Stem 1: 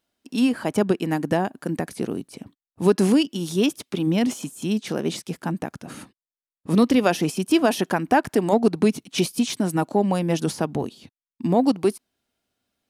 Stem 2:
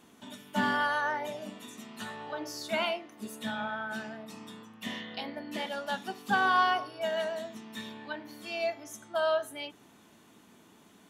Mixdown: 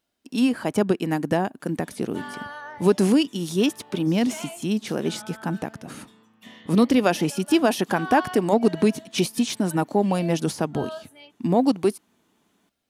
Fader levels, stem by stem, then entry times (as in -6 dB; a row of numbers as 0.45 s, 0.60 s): -0.5 dB, -8.0 dB; 0.00 s, 1.60 s